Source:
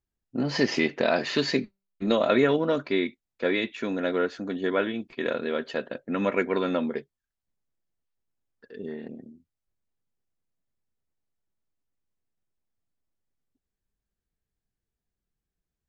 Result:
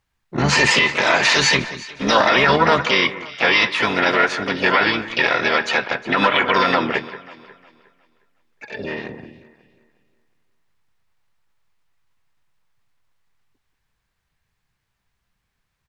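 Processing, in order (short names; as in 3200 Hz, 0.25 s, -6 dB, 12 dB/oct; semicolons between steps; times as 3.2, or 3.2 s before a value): graphic EQ 125/250/500/1000/2000/4000 Hz +7/-9/-8/+11/+9/+6 dB; harmoniser -12 st -12 dB, +5 st -6 dB, +7 st -9 dB; limiter -14 dBFS, peak gain reduction 10.5 dB; bell 450 Hz +5 dB 1.6 oct; on a send: echo with dull and thin repeats by turns 0.18 s, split 2100 Hz, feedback 55%, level -13 dB; on the sum: gain +7.5 dB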